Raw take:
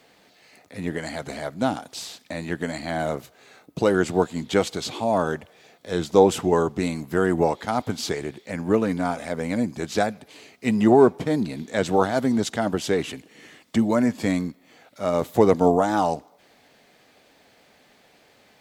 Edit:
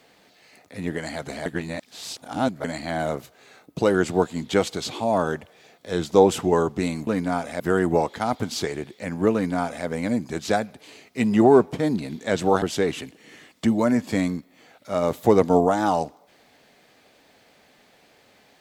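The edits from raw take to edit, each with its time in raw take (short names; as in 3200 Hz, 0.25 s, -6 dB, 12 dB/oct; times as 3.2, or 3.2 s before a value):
1.46–2.64 reverse
8.8–9.33 copy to 7.07
12.09–12.73 cut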